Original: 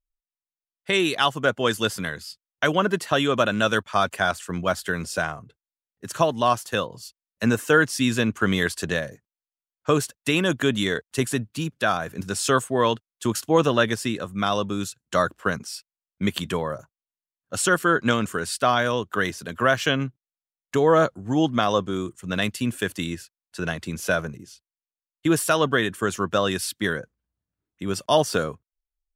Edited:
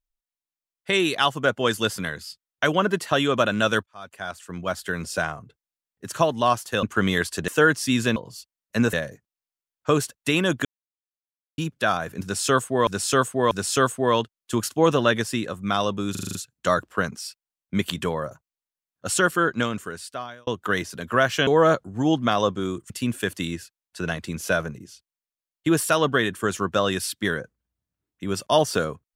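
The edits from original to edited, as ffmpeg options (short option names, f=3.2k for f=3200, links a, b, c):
-filter_complex "[0:a]asplit=19[a][b][c][d][e][f][g][h][i][j][k][l][m][n][o][p][q][r][s];[a]atrim=end=3.86,asetpts=PTS-STARTPTS,afade=t=out:st=3.856:d=0.004:c=hsin[t];[b]atrim=start=3.86:end=6.832,asetpts=PTS-STARTPTS,afade=t=in:d=1.29[u];[c]atrim=start=8.278:end=8.932[v];[d]atrim=start=7.598:end=8.282[w];[e]atrim=start=6.828:end=7.602[x];[f]atrim=start=8.928:end=10.65,asetpts=PTS-STARTPTS,afade=t=out:st=1.718:d=0.004:c=hsin[y];[g]atrim=start=10.65:end=11.58,asetpts=PTS-STARTPTS,volume=0[z];[h]atrim=start=11.58:end=12.872,asetpts=PTS-STARTPTS,afade=t=in:d=0.004:c=hsin[aa];[i]atrim=start=12.228:end=12.872[ab];[j]atrim=start=12.228:end=14.872[ac];[k]atrim=start=14.828:end=14.872[ad];[l]atrim=start=14.828:end=14.872[ae];[m]atrim=start=14.828:end=14.872[af];[n]atrim=start=14.828:end=14.872[ag];[o]atrim=start=14.828:end=14.872[ah];[p]atrim=start=14.828:end=18.95,asetpts=PTS-STARTPTS,afade=t=out:st=2.892:d=1.23[ai];[q]atrim=start=18.95:end=19.952,asetpts=PTS-STARTPTS,afade=t=in:d=0.004:c=hsin[aj];[r]atrim=start=20.778:end=22.212[ak];[s]atrim=start=22.488[al];[t][u]concat=n=2:v=0:a=1[am];[am][v]acrossfade=d=0.004:c1=hsin:c2=hsin[an];[an][w]acrossfade=d=0.004:c1=hsin:c2=hsin[ao];[ao][x]acrossfade=d=0.004:c1=hsin:c2=hsin[ap];[y][z][aa]concat=n=3:v=0:a=1[aq];[ap][aq]acrossfade=d=0.004:c1=hsin:c2=hsin[ar];[ar][ab]acrossfade=d=0.004:c1=hsin:c2=hsin[as];[as][ac]acrossfade=d=0.004:c1=hsin:c2=hsin[at];[at][ad]acrossfade=d=0.004:c1=hsin:c2=hsin[au];[au][ae]acrossfade=d=0.004:c1=hsin:c2=hsin[av];[av][af]acrossfade=d=0.004:c1=hsin:c2=hsin[aw];[aw][ag]acrossfade=d=0.004:c1=hsin:c2=hsin[ax];[ax][ah]acrossfade=d=0.004:c1=hsin:c2=hsin[ay];[ai][aj]concat=n=2:v=0:a=1[az];[ay][az]acrossfade=d=0.004:c1=hsin:c2=hsin[ba];[ba][ak]acrossfade=d=0.004:c1=hsin:c2=hsin[bb];[bb][al]acrossfade=d=0.004:c1=hsin:c2=hsin"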